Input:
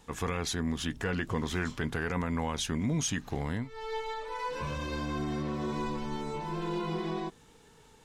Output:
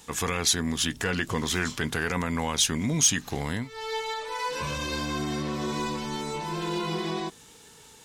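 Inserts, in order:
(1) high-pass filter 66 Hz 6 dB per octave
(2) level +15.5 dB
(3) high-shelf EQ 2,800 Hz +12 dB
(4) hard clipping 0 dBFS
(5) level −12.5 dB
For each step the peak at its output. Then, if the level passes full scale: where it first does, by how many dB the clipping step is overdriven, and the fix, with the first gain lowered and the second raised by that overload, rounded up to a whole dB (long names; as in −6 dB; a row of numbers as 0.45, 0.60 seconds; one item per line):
−19.0, −3.5, +4.0, 0.0, −12.5 dBFS
step 3, 4.0 dB
step 2 +11.5 dB, step 5 −8.5 dB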